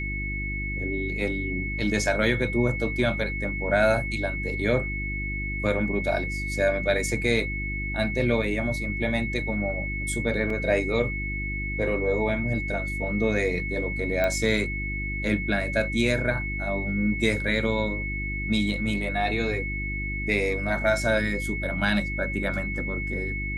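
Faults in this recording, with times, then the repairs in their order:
mains hum 50 Hz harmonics 7 −32 dBFS
whistle 2,200 Hz −31 dBFS
0:10.50: drop-out 2.9 ms
0:14.24: click −13 dBFS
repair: click removal
hum removal 50 Hz, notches 7
notch filter 2,200 Hz, Q 30
repair the gap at 0:10.50, 2.9 ms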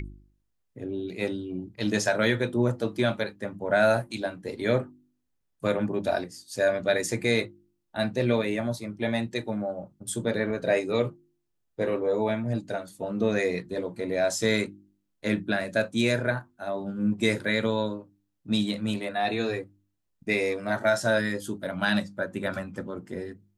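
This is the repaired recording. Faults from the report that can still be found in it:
none of them is left

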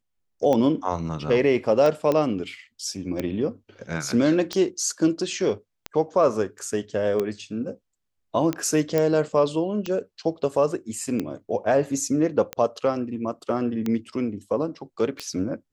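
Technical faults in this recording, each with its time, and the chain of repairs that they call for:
scratch tick 45 rpm −13 dBFS
0:02.12: click −12 dBFS
0:08.98: click −10 dBFS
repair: click removal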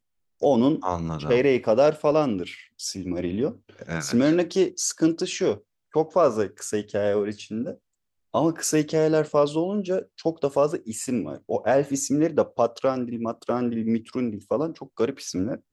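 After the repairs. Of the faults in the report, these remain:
none of them is left

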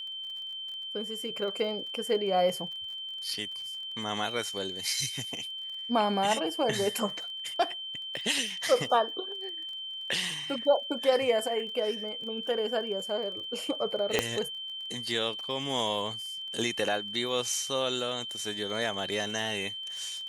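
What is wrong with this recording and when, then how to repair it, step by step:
surface crackle 33 per second −40 dBFS
whistle 3,100 Hz −36 dBFS
0:14.19: click −9 dBFS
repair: click removal
notch filter 3,100 Hz, Q 30

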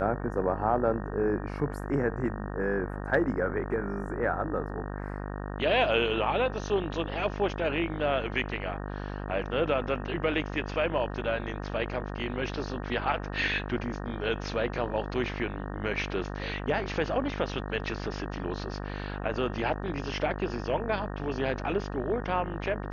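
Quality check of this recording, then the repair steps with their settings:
mains buzz 50 Hz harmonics 37 −36 dBFS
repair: hum removal 50 Hz, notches 37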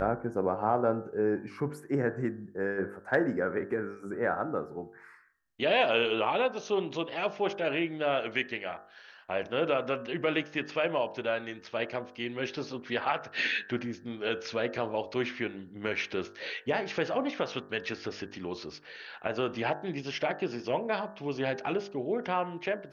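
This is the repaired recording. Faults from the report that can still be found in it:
none of them is left

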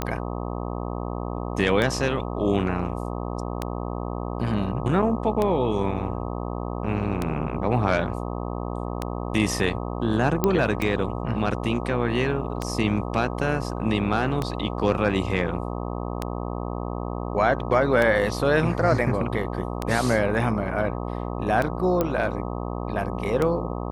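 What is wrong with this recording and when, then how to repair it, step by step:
mains buzz 60 Hz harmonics 21 −30 dBFS
scratch tick 33 1/3 rpm −11 dBFS
0:10.44: click −7 dBFS
0:22.01: click −10 dBFS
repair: click removal
hum removal 60 Hz, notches 21

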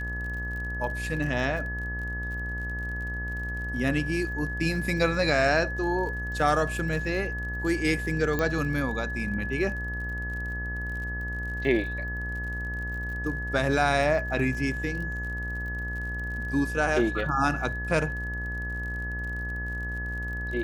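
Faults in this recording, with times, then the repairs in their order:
mains buzz 60 Hz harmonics 22 −34 dBFS
surface crackle 47 per second −37 dBFS
whistle 1,700 Hz −33 dBFS
0:08.39: click −14 dBFS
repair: click removal
hum removal 60 Hz, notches 22
notch filter 1,700 Hz, Q 30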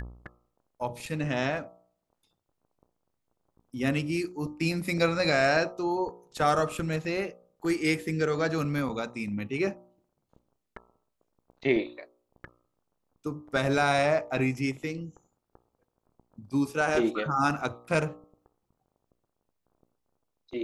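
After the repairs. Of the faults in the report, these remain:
none of them is left

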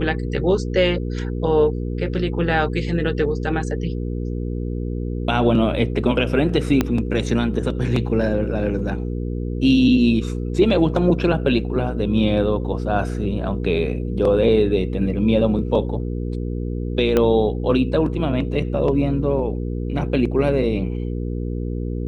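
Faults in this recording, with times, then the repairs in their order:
mains hum 60 Hz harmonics 8 −25 dBFS
0:06.81: click −5 dBFS
0:17.17: click −6 dBFS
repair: click removal
hum removal 60 Hz, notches 8

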